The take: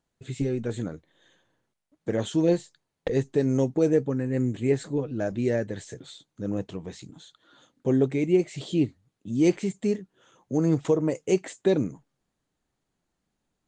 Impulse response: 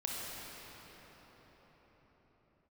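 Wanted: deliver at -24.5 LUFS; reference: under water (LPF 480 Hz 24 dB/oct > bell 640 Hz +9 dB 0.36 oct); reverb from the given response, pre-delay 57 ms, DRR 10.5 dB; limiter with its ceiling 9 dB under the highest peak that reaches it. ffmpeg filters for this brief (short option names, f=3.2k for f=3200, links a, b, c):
-filter_complex "[0:a]alimiter=limit=-20dB:level=0:latency=1,asplit=2[a][b];[1:a]atrim=start_sample=2205,adelay=57[c];[b][c]afir=irnorm=-1:irlink=0,volume=-14dB[d];[a][d]amix=inputs=2:normalize=0,lowpass=f=480:w=0.5412,lowpass=f=480:w=1.3066,equalizer=f=640:t=o:w=0.36:g=9,volume=7dB"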